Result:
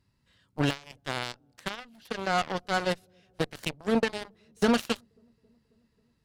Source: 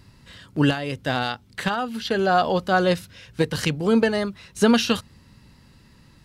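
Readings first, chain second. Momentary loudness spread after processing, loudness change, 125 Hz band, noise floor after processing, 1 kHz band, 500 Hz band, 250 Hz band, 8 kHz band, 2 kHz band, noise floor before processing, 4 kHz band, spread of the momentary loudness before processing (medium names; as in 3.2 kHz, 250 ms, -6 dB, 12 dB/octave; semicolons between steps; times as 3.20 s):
13 LU, -8.0 dB, -9.5 dB, -72 dBFS, -8.0 dB, -8.5 dB, -8.5 dB, -7.0 dB, -7.0 dB, -54 dBFS, -7.0 dB, 9 LU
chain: feedback echo behind a low-pass 270 ms, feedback 69%, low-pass 500 Hz, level -21 dB; Chebyshev shaper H 5 -44 dB, 7 -15 dB, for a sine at -6.5 dBFS; trim -7 dB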